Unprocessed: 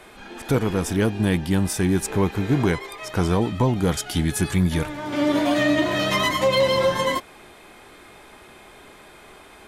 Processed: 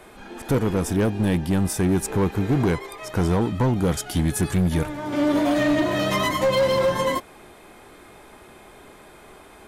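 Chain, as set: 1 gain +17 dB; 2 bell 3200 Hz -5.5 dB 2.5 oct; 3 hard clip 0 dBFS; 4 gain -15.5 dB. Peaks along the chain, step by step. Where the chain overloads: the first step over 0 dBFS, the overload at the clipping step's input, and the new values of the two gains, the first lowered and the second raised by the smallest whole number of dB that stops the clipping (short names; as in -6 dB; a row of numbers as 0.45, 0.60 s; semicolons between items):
+6.0, +6.0, 0.0, -15.5 dBFS; step 1, 6.0 dB; step 1 +11 dB, step 4 -9.5 dB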